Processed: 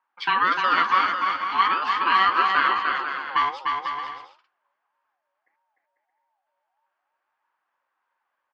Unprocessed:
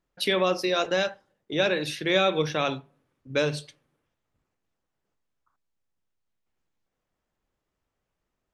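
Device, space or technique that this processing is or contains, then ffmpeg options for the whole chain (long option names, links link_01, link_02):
voice changer toy: -af "aeval=exprs='val(0)*sin(2*PI*750*n/s+750*0.25/1.6*sin(2*PI*1.6*n/s))':channel_layout=same,highpass=430,equalizer=frequency=440:width_type=q:width=4:gain=-8,equalizer=frequency=640:width_type=q:width=4:gain=-7,equalizer=frequency=1100:width_type=q:width=4:gain=8,equalizer=frequency=1600:width_type=q:width=4:gain=9,equalizer=frequency=3900:width_type=q:width=4:gain=-7,lowpass=frequency=4200:width=0.5412,lowpass=frequency=4200:width=1.3066,aecho=1:1:300|495|621.8|704.1|757.7:0.631|0.398|0.251|0.158|0.1,asubboost=boost=11:cutoff=51,volume=3dB"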